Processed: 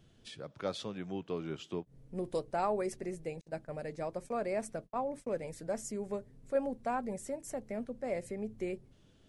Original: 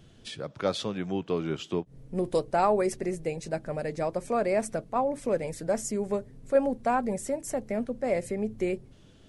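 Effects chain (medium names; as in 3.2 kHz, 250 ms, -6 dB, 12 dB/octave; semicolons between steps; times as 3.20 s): 3.41–5.44 s: gate -37 dBFS, range -40 dB; trim -8.5 dB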